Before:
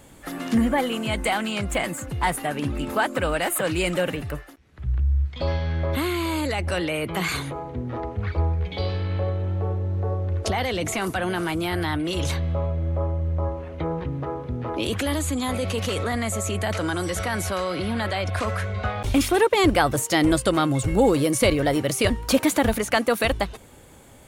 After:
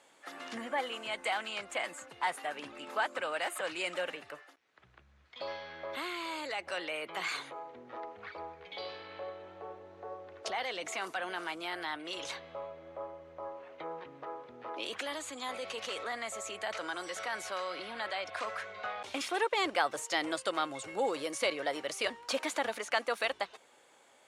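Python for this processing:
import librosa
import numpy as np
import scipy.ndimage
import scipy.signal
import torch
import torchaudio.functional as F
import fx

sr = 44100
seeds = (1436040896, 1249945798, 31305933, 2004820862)

y = fx.bandpass_edges(x, sr, low_hz=600.0, high_hz=6700.0)
y = F.gain(torch.from_numpy(y), -8.0).numpy()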